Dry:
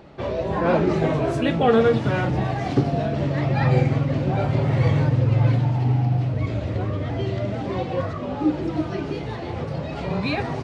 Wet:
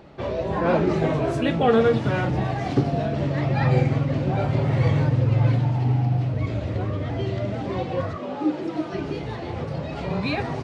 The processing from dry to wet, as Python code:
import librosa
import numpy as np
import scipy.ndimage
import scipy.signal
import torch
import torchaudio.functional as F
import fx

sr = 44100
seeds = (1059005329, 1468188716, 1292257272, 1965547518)

y = fx.highpass(x, sr, hz=230.0, slope=12, at=(8.16, 8.94))
y = F.gain(torch.from_numpy(y), -1.0).numpy()